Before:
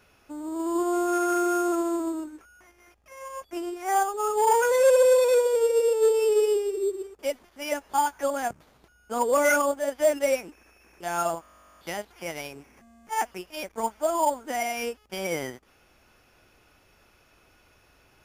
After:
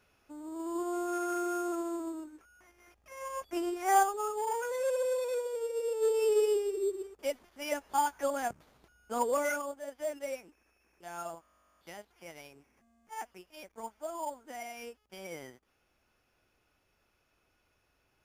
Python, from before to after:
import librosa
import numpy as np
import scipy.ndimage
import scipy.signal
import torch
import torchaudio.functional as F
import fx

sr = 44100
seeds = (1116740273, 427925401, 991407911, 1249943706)

y = fx.gain(x, sr, db=fx.line((2.29, -9.0), (3.26, -1.0), (3.99, -1.0), (4.47, -13.0), (5.73, -13.0), (6.25, -5.0), (9.22, -5.0), (9.62, -14.0)))